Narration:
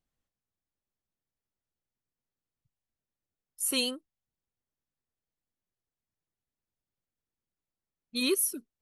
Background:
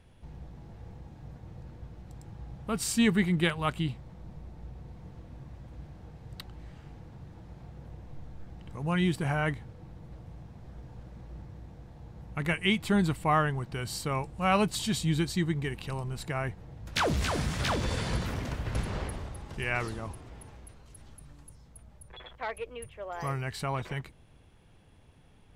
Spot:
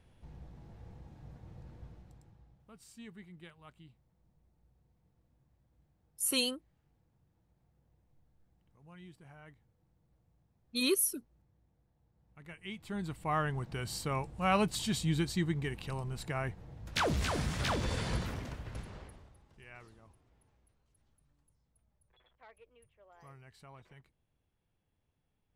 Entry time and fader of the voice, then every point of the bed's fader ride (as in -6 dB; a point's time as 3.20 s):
2.60 s, -2.0 dB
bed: 1.89 s -5.5 dB
2.77 s -26 dB
12.17 s -26 dB
13.58 s -3.5 dB
18.18 s -3.5 dB
19.51 s -22 dB